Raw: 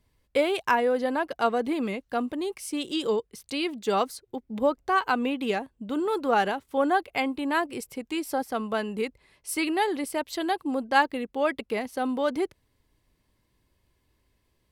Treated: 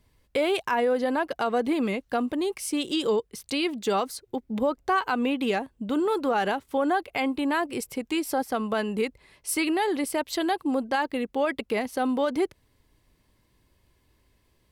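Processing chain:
in parallel at −3 dB: downward compressor, threshold −31 dBFS, peak gain reduction 15 dB
on the sum: brickwall limiter −16 dBFS, peak gain reduction 9 dB

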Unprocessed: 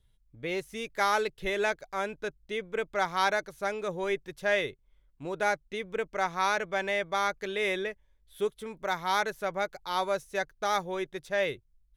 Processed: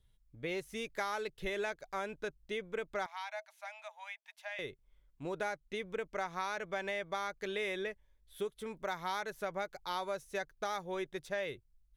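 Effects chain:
downward compressor, threshold −31 dBFS, peak gain reduction 10 dB
0:03.06–0:04.59: Chebyshev high-pass with heavy ripple 620 Hz, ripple 9 dB
level −2.5 dB

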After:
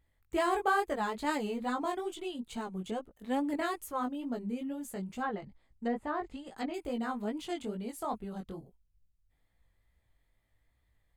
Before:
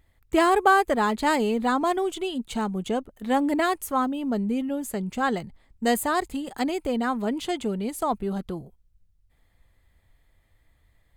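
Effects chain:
chorus effect 2.3 Hz, delay 16.5 ms, depth 4.4 ms
0:05.21–0:06.74: treble cut that deepens with the level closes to 1,200 Hz, closed at −21.5 dBFS
level −7 dB

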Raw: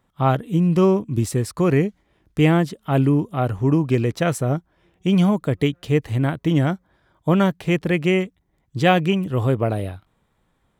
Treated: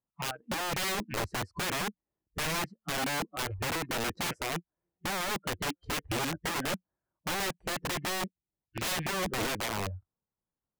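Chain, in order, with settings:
loose part that buzzes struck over −24 dBFS, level −12 dBFS
low-pass filter 1,300 Hz 12 dB per octave
low-shelf EQ 77 Hz −5.5 dB
downward compressor 2 to 1, threshold −29 dBFS, peak gain reduction 9.5 dB
noise reduction from a noise print of the clip's start 28 dB
wrap-around overflow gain 29 dB
level +2 dB

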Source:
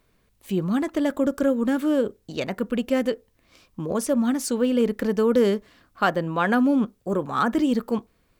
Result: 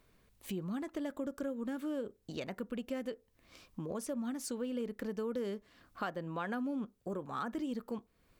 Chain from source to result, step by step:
downward compressor 2.5 to 1, threshold −39 dBFS, peak gain reduction 16 dB
level −3 dB

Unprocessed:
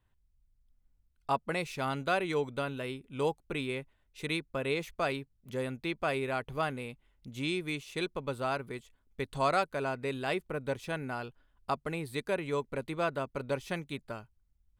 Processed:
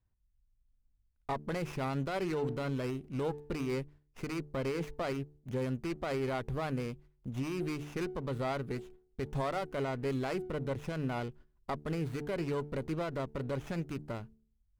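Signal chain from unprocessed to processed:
noise gate −58 dBFS, range −11 dB
low-shelf EQ 330 Hz +9 dB
hum removal 73.68 Hz, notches 6
brickwall limiter −24.5 dBFS, peak gain reduction 9.5 dB
windowed peak hold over 9 samples

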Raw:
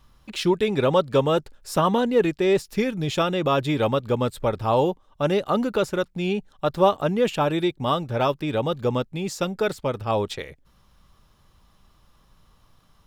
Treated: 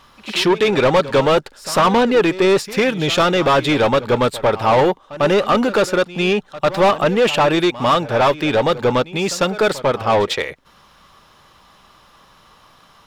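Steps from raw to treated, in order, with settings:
mid-hump overdrive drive 23 dB, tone 3,500 Hz, clips at −5.5 dBFS
echo ahead of the sound 99 ms −16.5 dB

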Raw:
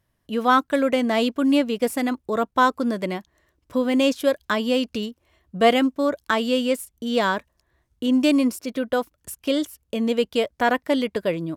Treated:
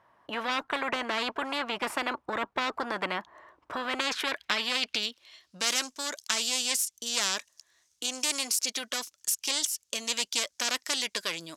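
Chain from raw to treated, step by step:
one-sided soft clipper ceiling −17.5 dBFS
band-pass filter sweep 980 Hz → 6,200 Hz, 0:03.67–0:05.72
every bin compressed towards the loudest bin 4 to 1
level +4 dB

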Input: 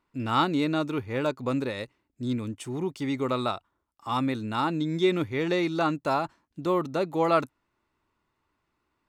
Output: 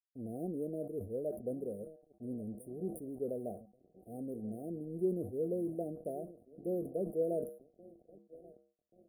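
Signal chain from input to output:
EQ curve with evenly spaced ripples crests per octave 0.86, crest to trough 9 dB
feedback echo with a low-pass in the loop 1,133 ms, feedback 65%, low-pass 970 Hz, level −17 dB
dead-zone distortion −44.5 dBFS
linear-phase brick-wall band-stop 750–8,700 Hz
low-shelf EQ 150 Hz −6 dB
tuned comb filter 68 Hz, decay 0.18 s, harmonics odd, mix 60%
level that may fall only so fast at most 110 dB per second
level −3 dB

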